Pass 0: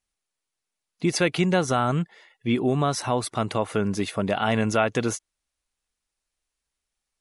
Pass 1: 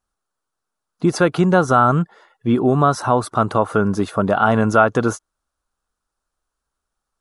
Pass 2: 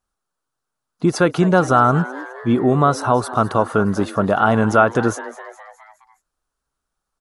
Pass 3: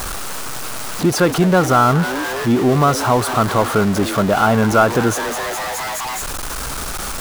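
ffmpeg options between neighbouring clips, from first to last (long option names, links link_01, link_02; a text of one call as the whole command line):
ffmpeg -i in.wav -af "highshelf=frequency=1700:width_type=q:width=3:gain=-7,volume=6.5dB" out.wav
ffmpeg -i in.wav -filter_complex "[0:a]asplit=6[link_01][link_02][link_03][link_04][link_05][link_06];[link_02]adelay=208,afreqshift=130,volume=-16.5dB[link_07];[link_03]adelay=416,afreqshift=260,volume=-21.5dB[link_08];[link_04]adelay=624,afreqshift=390,volume=-26.6dB[link_09];[link_05]adelay=832,afreqshift=520,volume=-31.6dB[link_10];[link_06]adelay=1040,afreqshift=650,volume=-36.6dB[link_11];[link_01][link_07][link_08][link_09][link_10][link_11]amix=inputs=6:normalize=0" out.wav
ffmpeg -i in.wav -af "aeval=exprs='val(0)+0.5*0.133*sgn(val(0))':channel_layout=same,volume=-1dB" out.wav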